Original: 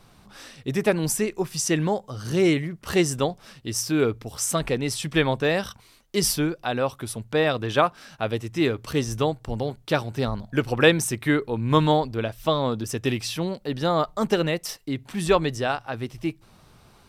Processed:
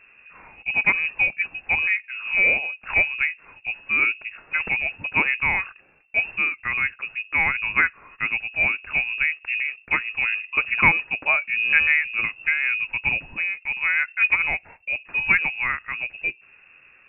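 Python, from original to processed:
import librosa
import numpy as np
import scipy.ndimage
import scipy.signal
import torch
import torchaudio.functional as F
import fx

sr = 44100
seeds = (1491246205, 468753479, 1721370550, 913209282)

y = fx.peak_eq(x, sr, hz=220.0, db=7.5, octaves=0.29)
y = fx.freq_invert(y, sr, carrier_hz=2700)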